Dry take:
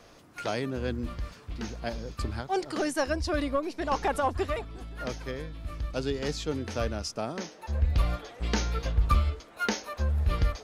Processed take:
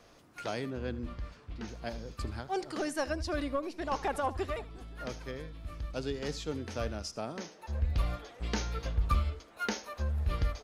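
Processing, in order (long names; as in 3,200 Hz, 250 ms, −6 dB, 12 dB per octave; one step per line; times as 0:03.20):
0:00.70–0:01.68: high-shelf EQ 7,100 Hz −12 dB
single-tap delay 78 ms −18 dB
level −5 dB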